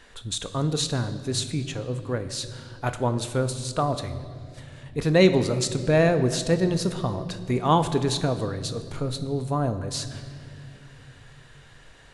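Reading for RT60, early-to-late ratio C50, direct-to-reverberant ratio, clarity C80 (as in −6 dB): 2.4 s, 12.0 dB, 8.5 dB, 13.0 dB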